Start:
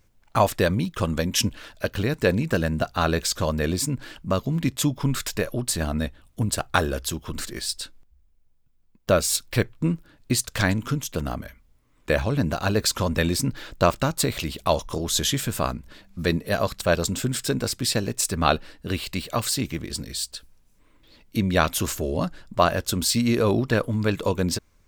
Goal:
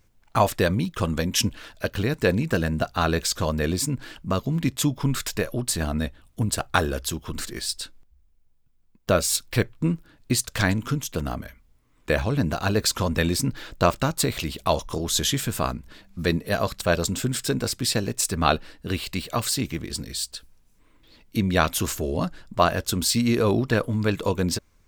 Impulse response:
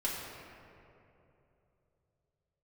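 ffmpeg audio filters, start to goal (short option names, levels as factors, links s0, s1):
-af "bandreject=f=570:w=19"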